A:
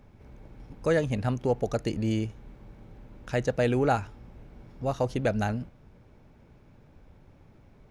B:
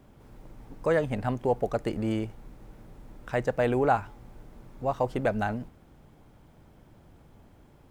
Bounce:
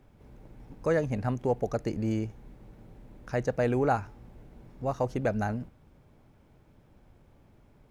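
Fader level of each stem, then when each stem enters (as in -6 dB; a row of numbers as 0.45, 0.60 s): -6.0, -8.0 dB; 0.00, 0.00 s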